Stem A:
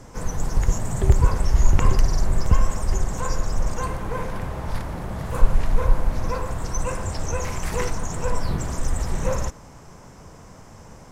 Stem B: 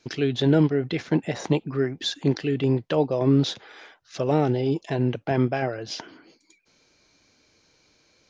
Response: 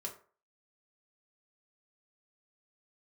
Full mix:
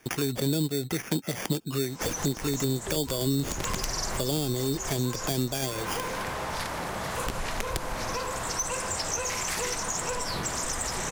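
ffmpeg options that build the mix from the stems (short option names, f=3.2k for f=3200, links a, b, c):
-filter_complex "[0:a]aeval=exprs='(mod(2.11*val(0)+1,2)-1)/2.11':c=same,asplit=2[a][b];[b]highpass=f=720:p=1,volume=22dB,asoftclip=type=tanh:threshold=-6dB[c];[a][c]amix=inputs=2:normalize=0,lowpass=f=6.2k:p=1,volume=-6dB,adelay=1850,volume=-10dB[d];[1:a]acrusher=samples=11:mix=1:aa=0.000001,volume=2.5dB,asplit=2[e][f];[f]apad=whole_len=571650[g];[d][g]sidechaincompress=threshold=-24dB:ratio=3:attack=16:release=280[h];[h][e]amix=inputs=2:normalize=0,acrossover=split=440|3000[i][j][k];[j]acompressor=threshold=-31dB:ratio=6[l];[i][l][k]amix=inputs=3:normalize=0,highshelf=f=2.3k:g=7.5,acompressor=threshold=-28dB:ratio=2.5"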